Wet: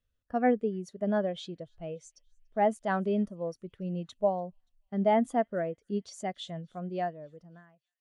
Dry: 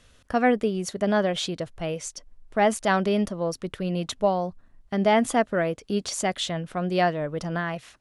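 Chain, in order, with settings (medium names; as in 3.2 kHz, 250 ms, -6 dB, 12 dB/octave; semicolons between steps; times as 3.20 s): fade out at the end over 1.42 s; feedback echo behind a high-pass 288 ms, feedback 69%, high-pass 2.5 kHz, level -20 dB; spectral contrast expander 1.5:1; trim -6 dB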